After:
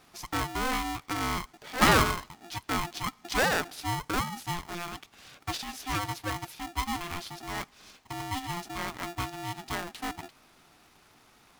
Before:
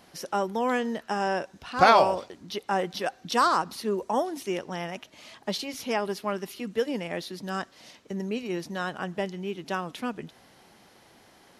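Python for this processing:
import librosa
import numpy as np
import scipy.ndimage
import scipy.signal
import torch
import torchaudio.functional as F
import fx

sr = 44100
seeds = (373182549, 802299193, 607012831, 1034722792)

y = fx.comb(x, sr, ms=7.3, depth=0.45, at=(6.65, 8.57))
y = y * np.sign(np.sin(2.0 * np.pi * 520.0 * np.arange(len(y)) / sr))
y = y * librosa.db_to_amplitude(-3.5)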